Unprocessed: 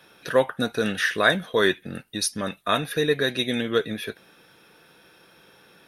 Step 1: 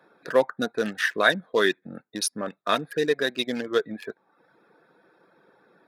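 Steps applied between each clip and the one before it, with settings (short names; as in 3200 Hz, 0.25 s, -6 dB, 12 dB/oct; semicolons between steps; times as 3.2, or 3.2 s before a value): Wiener smoothing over 15 samples; HPF 210 Hz 12 dB/oct; reverb removal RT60 0.64 s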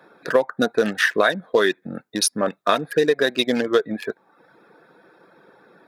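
dynamic EQ 630 Hz, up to +4 dB, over -33 dBFS, Q 0.79; compressor 10:1, threshold -21 dBFS, peak gain reduction 11.5 dB; gain +7.5 dB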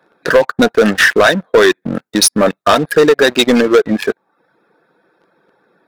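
sample leveller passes 3; gain +1.5 dB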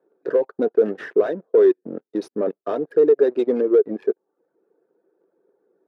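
band-pass 400 Hz, Q 3.6; gain -2.5 dB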